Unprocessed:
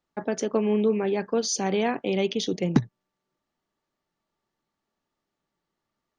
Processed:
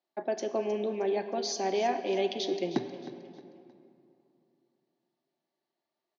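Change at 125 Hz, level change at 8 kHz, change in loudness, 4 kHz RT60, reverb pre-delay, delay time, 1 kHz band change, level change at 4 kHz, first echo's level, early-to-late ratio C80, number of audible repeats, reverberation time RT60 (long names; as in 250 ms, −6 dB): −16.0 dB, −9.0 dB, −5.5 dB, 1.8 s, 6 ms, 312 ms, −0.5 dB, −4.0 dB, −14.5 dB, 9.0 dB, 3, 2.7 s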